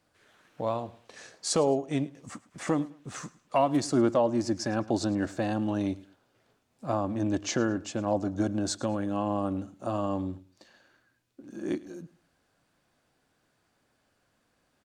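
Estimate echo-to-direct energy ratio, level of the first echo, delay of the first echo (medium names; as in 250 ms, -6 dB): -20.0 dB, -20.5 dB, 106 ms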